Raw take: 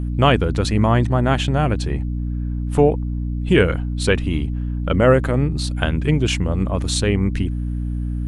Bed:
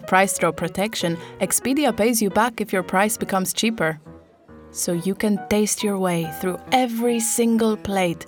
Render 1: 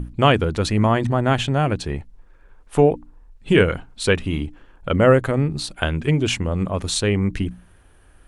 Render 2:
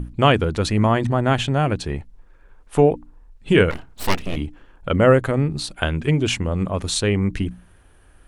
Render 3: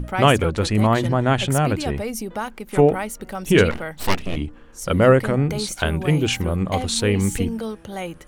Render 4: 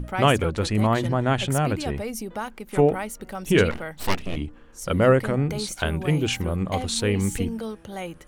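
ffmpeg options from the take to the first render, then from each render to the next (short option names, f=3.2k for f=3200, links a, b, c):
-af "bandreject=f=60:t=h:w=6,bandreject=f=120:t=h:w=6,bandreject=f=180:t=h:w=6,bandreject=f=240:t=h:w=6,bandreject=f=300:t=h:w=6"
-filter_complex "[0:a]asplit=3[a][b][c];[a]afade=t=out:st=3.7:d=0.02[d];[b]aeval=exprs='abs(val(0))':c=same,afade=t=in:st=3.7:d=0.02,afade=t=out:st=4.35:d=0.02[e];[c]afade=t=in:st=4.35:d=0.02[f];[d][e][f]amix=inputs=3:normalize=0"
-filter_complex "[1:a]volume=-9.5dB[a];[0:a][a]amix=inputs=2:normalize=0"
-af "volume=-3.5dB"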